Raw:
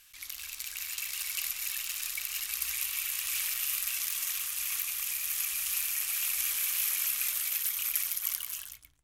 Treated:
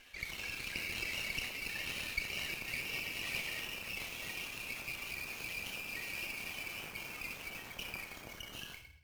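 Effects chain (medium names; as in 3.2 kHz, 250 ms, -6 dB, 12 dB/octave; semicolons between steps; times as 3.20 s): compression 5:1, threshold -35 dBFS, peak gain reduction 10.5 dB; spectral gate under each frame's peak -10 dB strong; reverberation RT60 0.85 s, pre-delay 25 ms, DRR 0 dB; sliding maximum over 5 samples; trim -3.5 dB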